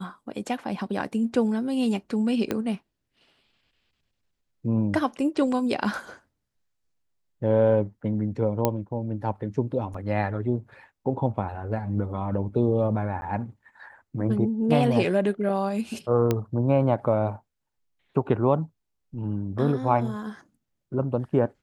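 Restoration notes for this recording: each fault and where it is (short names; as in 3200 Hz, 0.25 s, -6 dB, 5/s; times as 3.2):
2.51 pop -12 dBFS
8.65 pop -8 dBFS
9.94 gap 4.1 ms
13.21–13.22 gap 10 ms
16.31 pop -10 dBFS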